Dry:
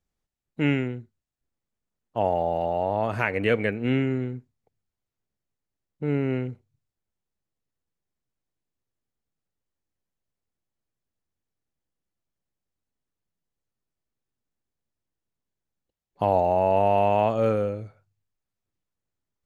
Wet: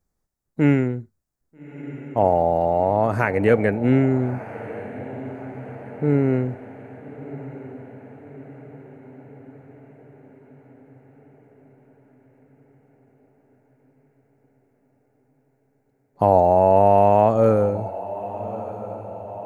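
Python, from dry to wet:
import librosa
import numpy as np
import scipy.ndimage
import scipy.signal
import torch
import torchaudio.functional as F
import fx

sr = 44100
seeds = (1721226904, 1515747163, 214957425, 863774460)

p1 = fx.peak_eq(x, sr, hz=3000.0, db=-14.0, octaves=0.95)
p2 = p1 + fx.echo_diffused(p1, sr, ms=1274, feedback_pct=57, wet_db=-15.0, dry=0)
y = F.gain(torch.from_numpy(p2), 6.5).numpy()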